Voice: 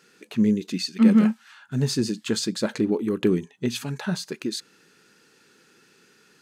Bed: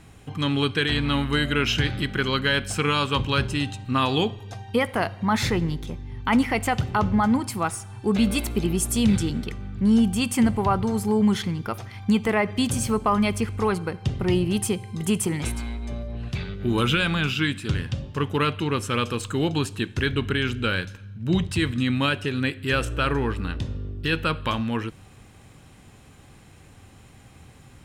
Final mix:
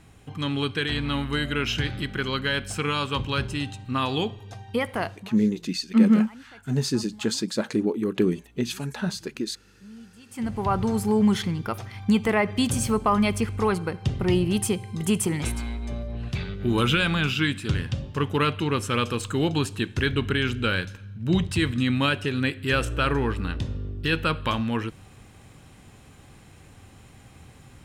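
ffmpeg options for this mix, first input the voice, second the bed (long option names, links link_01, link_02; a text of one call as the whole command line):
ffmpeg -i stem1.wav -i stem2.wav -filter_complex "[0:a]adelay=4950,volume=-1dB[link_01];[1:a]volume=23dB,afade=type=out:start_time=5.06:duration=0.23:silence=0.0707946,afade=type=in:start_time=10.27:duration=0.57:silence=0.0473151[link_02];[link_01][link_02]amix=inputs=2:normalize=0" out.wav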